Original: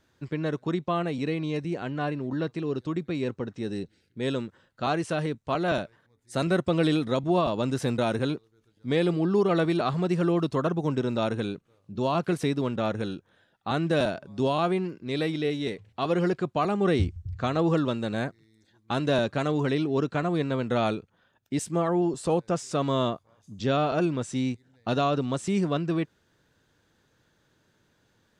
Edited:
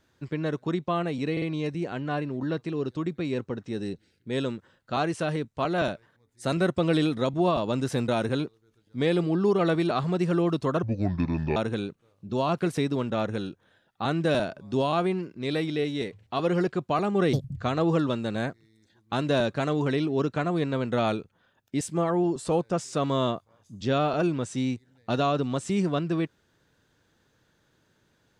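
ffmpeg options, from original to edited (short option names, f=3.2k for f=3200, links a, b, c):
-filter_complex "[0:a]asplit=7[a][b][c][d][e][f][g];[a]atrim=end=1.372[h];[b]atrim=start=1.318:end=1.372[i];[c]atrim=start=1.318:end=10.734[j];[d]atrim=start=10.73:end=11.22,asetpts=PTS-STARTPTS,asetrate=29547,aresample=44100,atrim=end_sample=32252,asetpts=PTS-STARTPTS[k];[e]atrim=start=11.216:end=16.994[l];[f]atrim=start=16.99:end=17.34,asetpts=PTS-STARTPTS,asetrate=68355,aresample=44100,atrim=end_sample=9958,asetpts=PTS-STARTPTS[m];[g]atrim=start=17.336[n];[h][i]acrossfade=d=0.004:c1=hsin:c2=hsin[o];[o][j]acrossfade=d=0.004:c1=hsin:c2=hsin[p];[p][k]acrossfade=d=0.004:c1=hsin:c2=hsin[q];[q][l]acrossfade=d=0.004:c1=hsin:c2=hsin[r];[r][m]acrossfade=d=0.004:c1=hsin:c2=hsin[s];[s][n]acrossfade=d=0.004:c1=hsin:c2=hsin"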